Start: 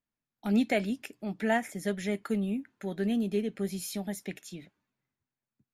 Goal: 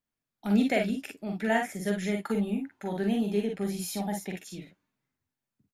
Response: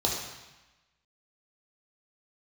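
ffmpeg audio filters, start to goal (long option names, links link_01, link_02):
-filter_complex "[0:a]asettb=1/sr,asplit=3[link_01][link_02][link_03];[link_01]atrim=end=2.234[link_04];[link_02]atrim=start=2.23:end=4.36,asetpts=PTS-STARTPTS,afade=type=in:duration=0.004:curve=qsin,afade=type=out:start_time=2.126:duration=0.004:curve=qsin,equalizer=frequency=860:width=3.1:gain=11[link_05];[link_03]atrim=start=4.356[link_06];[link_04][link_05]acrossfade=duration=0.004:curve1=hsin:curve2=qsin[link_07];[link_07][link_06]acrossfade=duration=0.004:curve1=qsin:curve2=hsin,aecho=1:1:44|55:0.596|0.447"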